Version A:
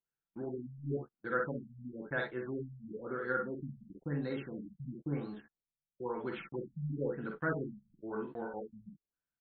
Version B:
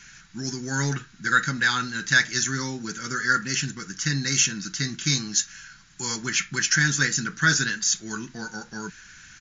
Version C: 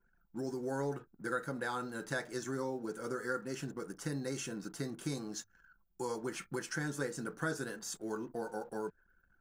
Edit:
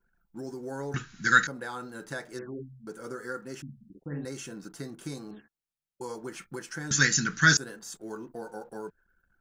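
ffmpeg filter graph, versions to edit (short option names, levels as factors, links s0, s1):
-filter_complex "[1:a]asplit=2[s0][s1];[0:a]asplit=3[s2][s3][s4];[2:a]asplit=6[s5][s6][s7][s8][s9][s10];[s5]atrim=end=0.942[s11];[s0]atrim=start=0.938:end=1.472[s12];[s6]atrim=start=1.468:end=2.392[s13];[s2]atrim=start=2.388:end=2.872[s14];[s7]atrim=start=2.868:end=3.622[s15];[s3]atrim=start=3.618:end=4.252[s16];[s8]atrim=start=4.248:end=5.312[s17];[s4]atrim=start=5.308:end=6.012[s18];[s9]atrim=start=6.008:end=6.912[s19];[s1]atrim=start=6.908:end=7.572[s20];[s10]atrim=start=7.568[s21];[s11][s12]acrossfade=d=0.004:c1=hsin:c2=hsin[s22];[s22][s13]acrossfade=d=0.004:c1=hsin:c2=hsin[s23];[s23][s14]acrossfade=d=0.004:c1=hsin:c2=hsin[s24];[s24][s15]acrossfade=d=0.004:c1=hsin:c2=hsin[s25];[s25][s16]acrossfade=d=0.004:c1=hsin:c2=hsin[s26];[s26][s17]acrossfade=d=0.004:c1=hsin:c2=hsin[s27];[s27][s18]acrossfade=d=0.004:c1=hsin:c2=hsin[s28];[s28][s19]acrossfade=d=0.004:c1=hsin:c2=hsin[s29];[s29][s20]acrossfade=d=0.004:c1=hsin:c2=hsin[s30];[s30][s21]acrossfade=d=0.004:c1=hsin:c2=hsin"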